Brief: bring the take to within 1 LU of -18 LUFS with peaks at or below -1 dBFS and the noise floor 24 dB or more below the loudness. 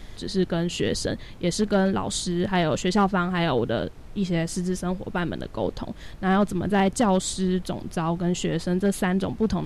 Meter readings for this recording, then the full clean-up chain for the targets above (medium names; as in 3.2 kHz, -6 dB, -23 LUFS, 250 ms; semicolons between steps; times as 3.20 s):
clipped samples 0.3%; clipping level -13.5 dBFS; noise floor -41 dBFS; noise floor target -49 dBFS; loudness -25.0 LUFS; peak level -13.5 dBFS; loudness target -18.0 LUFS
-> clip repair -13.5 dBFS; noise print and reduce 8 dB; trim +7 dB